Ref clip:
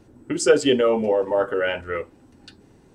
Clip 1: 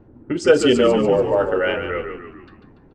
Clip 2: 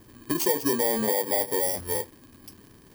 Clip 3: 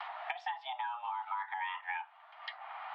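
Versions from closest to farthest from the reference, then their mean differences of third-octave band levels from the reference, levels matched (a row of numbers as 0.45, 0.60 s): 1, 2, 3; 4.0, 12.5, 16.5 dB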